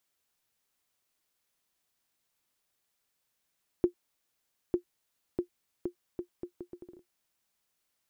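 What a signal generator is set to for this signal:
bouncing ball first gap 0.90 s, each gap 0.72, 353 Hz, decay 99 ms −14.5 dBFS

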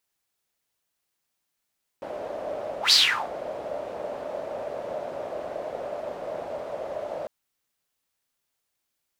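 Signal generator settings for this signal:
pass-by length 5.25 s, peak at 0:00.90, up 0.11 s, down 0.40 s, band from 600 Hz, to 4,600 Hz, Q 6.5, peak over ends 17 dB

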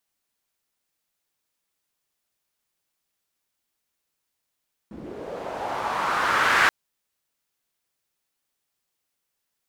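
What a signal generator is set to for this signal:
filter sweep on noise pink, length 1.78 s bandpass, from 210 Hz, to 1,600 Hz, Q 2.5, linear, gain ramp +22 dB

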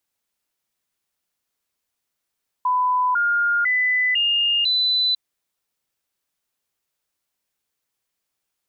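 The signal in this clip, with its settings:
stepped sweep 1,000 Hz up, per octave 2, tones 5, 0.50 s, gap 0.00 s −16.5 dBFS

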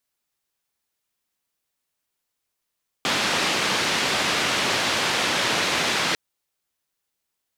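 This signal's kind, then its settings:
band-limited noise 130–3,800 Hz, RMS −23 dBFS 3.10 s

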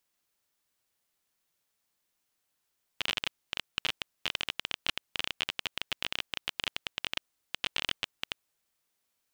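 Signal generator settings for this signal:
Geiger counter clicks 19 per second −12.5 dBFS 5.54 s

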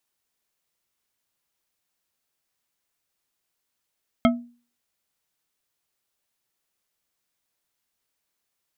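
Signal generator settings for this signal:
struck glass bar, lowest mode 240 Hz, decay 0.39 s, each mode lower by 3 dB, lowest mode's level −12.5 dB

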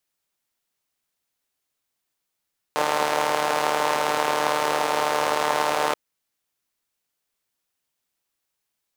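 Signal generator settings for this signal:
pulse-train model of a four-cylinder engine, steady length 3.18 s, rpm 4,500, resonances 570/850 Hz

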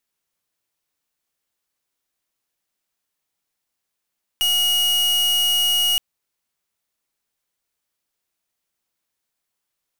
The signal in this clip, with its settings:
pulse wave 2,890 Hz, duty 43% −18.5 dBFS 1.57 s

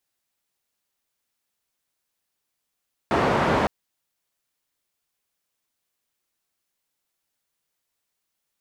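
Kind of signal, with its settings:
band-limited noise 83–970 Hz, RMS −21 dBFS 0.56 s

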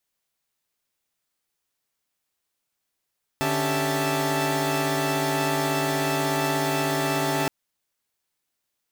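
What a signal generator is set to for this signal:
held notes D3/C#4/G4/E5/A5 saw, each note −26.5 dBFS 4.07 s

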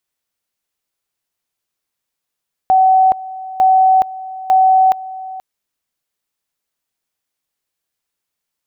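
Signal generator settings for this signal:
tone at two levels in turn 756 Hz −7 dBFS, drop 18 dB, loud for 0.42 s, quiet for 0.48 s, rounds 3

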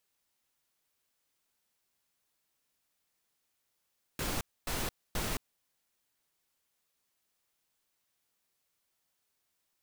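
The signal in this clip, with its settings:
noise bursts pink, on 0.22 s, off 0.26 s, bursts 3, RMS −34 dBFS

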